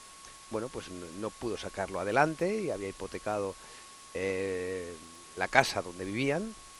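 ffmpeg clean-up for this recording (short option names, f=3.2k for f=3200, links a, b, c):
-af "adeclick=t=4,bandreject=f=1.1k:w=30,afwtdn=0.0032"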